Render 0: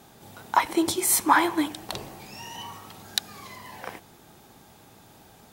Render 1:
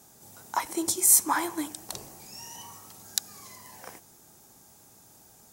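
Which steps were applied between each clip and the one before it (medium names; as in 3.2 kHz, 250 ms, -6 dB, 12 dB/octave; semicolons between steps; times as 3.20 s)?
resonant high shelf 4.7 kHz +10 dB, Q 1.5; trim -7.5 dB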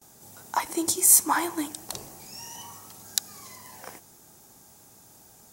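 gate with hold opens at -46 dBFS; trim +2 dB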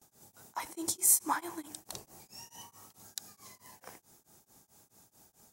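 tremolo of two beating tones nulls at 4.6 Hz; trim -6.5 dB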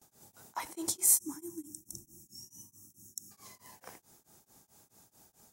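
time-frequency box 1.18–3.31 s, 380–5300 Hz -24 dB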